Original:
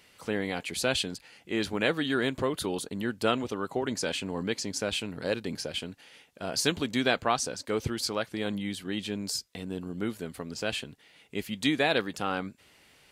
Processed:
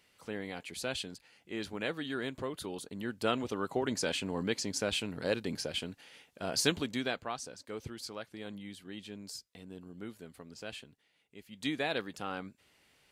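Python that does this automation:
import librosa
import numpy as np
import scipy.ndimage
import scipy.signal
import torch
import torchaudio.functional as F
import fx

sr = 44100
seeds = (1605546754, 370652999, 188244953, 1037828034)

y = fx.gain(x, sr, db=fx.line((2.75, -9.0), (3.61, -2.0), (6.69, -2.0), (7.27, -12.0), (10.76, -12.0), (11.45, -19.0), (11.67, -8.0)))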